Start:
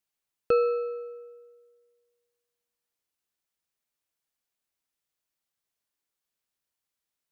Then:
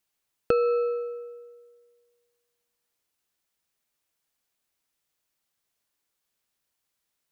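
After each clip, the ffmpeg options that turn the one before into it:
ffmpeg -i in.wav -af "acompressor=threshold=-26dB:ratio=6,volume=6dB" out.wav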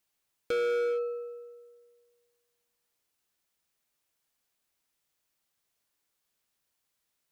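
ffmpeg -i in.wav -af "asoftclip=type=hard:threshold=-26.5dB" out.wav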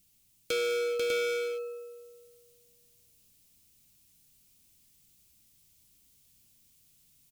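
ffmpeg -i in.wav -filter_complex "[0:a]acrossover=split=230[link_01][link_02];[link_01]acompressor=mode=upward:threshold=-57dB:ratio=2.5[link_03];[link_02]aexciter=amount=2.8:drive=7.5:freq=2300[link_04];[link_03][link_04]amix=inputs=2:normalize=0,aecho=1:1:492|598:0.631|0.708,volume=-2dB" out.wav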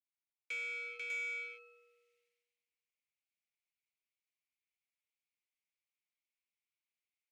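ffmpeg -i in.wav -af "agate=range=-33dB:threshold=-54dB:ratio=3:detection=peak,bandpass=frequency=2200:width_type=q:width=5.5:csg=0,asoftclip=type=tanh:threshold=-35.5dB,volume=2dB" out.wav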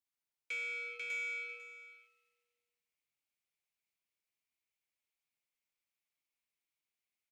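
ffmpeg -i in.wav -af "aecho=1:1:497:0.178,volume=1dB" out.wav

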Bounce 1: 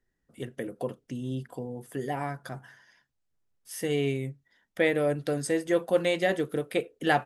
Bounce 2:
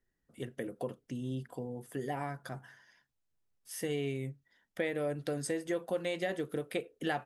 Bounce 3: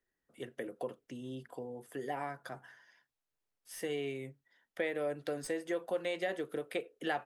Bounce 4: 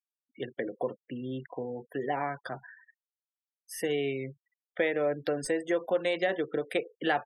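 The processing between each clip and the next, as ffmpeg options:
ffmpeg -i in.wav -af "acompressor=threshold=-28dB:ratio=3,volume=-3.5dB" out.wav
ffmpeg -i in.wav -filter_complex "[0:a]bass=frequency=250:gain=-11,treble=frequency=4000:gain=-4,acrossover=split=270|4800[link_01][link_02][link_03];[link_03]aeval=exprs='clip(val(0),-1,0.00596)':channel_layout=same[link_04];[link_01][link_02][link_04]amix=inputs=3:normalize=0" out.wav
ffmpeg -i in.wav -af "afftfilt=real='re*gte(hypot(re,im),0.00355)':imag='im*gte(hypot(re,im),0.00355)':win_size=1024:overlap=0.75,volume=7dB" out.wav

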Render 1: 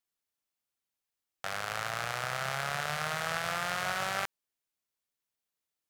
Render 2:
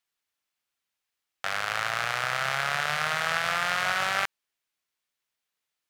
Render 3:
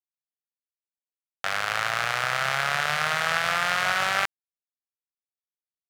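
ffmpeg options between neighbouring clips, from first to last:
ffmpeg -i in.wav -af "equalizer=frequency=2200:width=0.41:gain=8" out.wav
ffmpeg -i in.wav -af "acrusher=bits=9:mix=0:aa=0.000001,volume=2.5dB" out.wav

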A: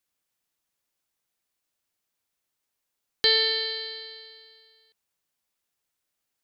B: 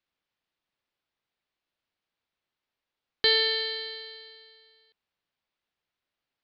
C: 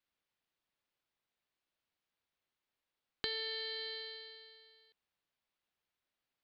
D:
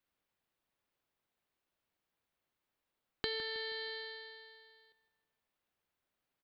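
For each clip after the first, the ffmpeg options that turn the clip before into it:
ffmpeg -i in.wav -af "lowpass=frequency=4300:width=0.5412,lowpass=frequency=4300:width=1.3066" out.wav
ffmpeg -i in.wav -af "acompressor=threshold=-34dB:ratio=5,volume=-3.5dB" out.wav
ffmpeg -i in.wav -filter_complex "[0:a]equalizer=frequency=5300:width=0.34:gain=-6,asplit=2[link_01][link_02];[link_02]adelay=159,lowpass=frequency=4500:poles=1,volume=-13dB,asplit=2[link_03][link_04];[link_04]adelay=159,lowpass=frequency=4500:poles=1,volume=0.47,asplit=2[link_05][link_06];[link_06]adelay=159,lowpass=frequency=4500:poles=1,volume=0.47,asplit=2[link_07][link_08];[link_08]adelay=159,lowpass=frequency=4500:poles=1,volume=0.47,asplit=2[link_09][link_10];[link_10]adelay=159,lowpass=frequency=4500:poles=1,volume=0.47[link_11];[link_01][link_03][link_05][link_07][link_09][link_11]amix=inputs=6:normalize=0,volume=4.5dB" out.wav

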